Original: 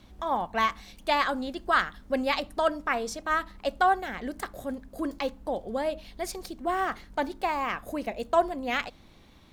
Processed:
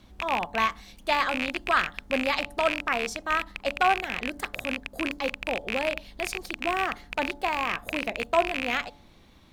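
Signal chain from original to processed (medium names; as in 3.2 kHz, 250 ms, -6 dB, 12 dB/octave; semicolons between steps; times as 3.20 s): rattle on loud lows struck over -42 dBFS, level -15 dBFS; de-hum 143.5 Hz, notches 6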